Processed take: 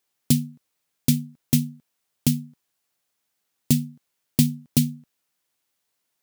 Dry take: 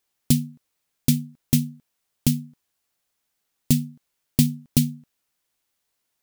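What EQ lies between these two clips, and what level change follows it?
HPF 89 Hz; 0.0 dB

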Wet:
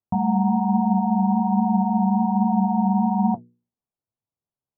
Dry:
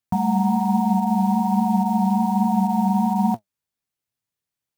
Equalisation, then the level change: LPF 1000 Hz 24 dB/oct; notches 60/120/180/240/300/360/420/480 Hz; 0.0 dB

